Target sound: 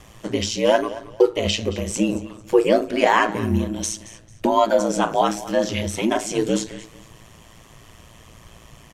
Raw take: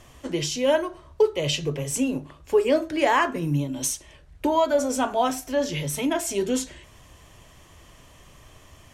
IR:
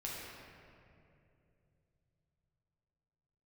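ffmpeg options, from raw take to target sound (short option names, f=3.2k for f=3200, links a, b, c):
-filter_complex "[0:a]acrossover=split=7900[a][b];[b]acompressor=threshold=-51dB:ratio=4:attack=1:release=60[c];[a][c]amix=inputs=2:normalize=0,aeval=exprs='val(0)*sin(2*PI*56*n/s)':c=same,aecho=1:1:223|446|669:0.141|0.0381|0.0103,volume=6.5dB"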